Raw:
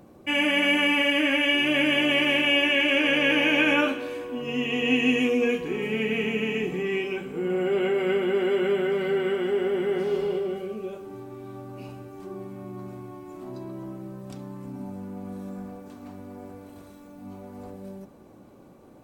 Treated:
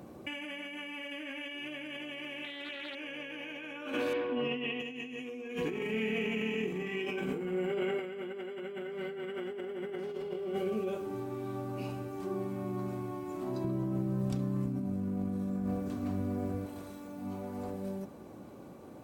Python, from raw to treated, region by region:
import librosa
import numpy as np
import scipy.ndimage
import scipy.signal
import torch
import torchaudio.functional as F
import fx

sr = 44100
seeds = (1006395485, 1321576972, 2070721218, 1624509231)

y = fx.chain(x, sr, fx.highpass(hz=61.0, slope=12),
    fx.doppler_dist(depth_ms=0.24), at=(2.44, 2.95))
y = fx.chain(y, sr, fx.lowpass(hz=3700.0, slope=24),
    fx.low_shelf(hz=120.0, db=-9.0), at=(4.13, 4.8))
y = fx.chain(y, sr, fx.doubler(ms=32.0, db=-4.5),
    fx.over_compress(threshold_db=-30.0, ratio=-1.0), at=(5.73, 7.99))
y = fx.chain(y, sr, fx.low_shelf(hz=230.0, db=12.0),
    fx.notch(hz=870.0, q=14.0), at=(13.64, 16.66))
y = scipy.signal.sosfilt(scipy.signal.butter(2, 58.0, 'highpass', fs=sr, output='sos'), y)
y = fx.over_compress(y, sr, threshold_db=-33.0, ratio=-1.0)
y = F.gain(torch.from_numpy(y), -4.0).numpy()